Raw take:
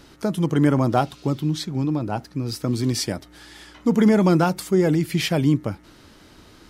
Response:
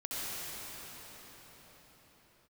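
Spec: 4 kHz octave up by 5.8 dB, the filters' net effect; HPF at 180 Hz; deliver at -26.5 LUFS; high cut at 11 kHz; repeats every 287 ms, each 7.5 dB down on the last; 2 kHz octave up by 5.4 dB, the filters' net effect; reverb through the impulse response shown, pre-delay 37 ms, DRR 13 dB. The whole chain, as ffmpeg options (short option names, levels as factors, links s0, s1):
-filter_complex "[0:a]highpass=180,lowpass=11000,equalizer=f=2000:t=o:g=5.5,equalizer=f=4000:t=o:g=6,aecho=1:1:287|574|861|1148|1435:0.422|0.177|0.0744|0.0312|0.0131,asplit=2[s0][s1];[1:a]atrim=start_sample=2205,adelay=37[s2];[s1][s2]afir=irnorm=-1:irlink=0,volume=0.119[s3];[s0][s3]amix=inputs=2:normalize=0,volume=0.562"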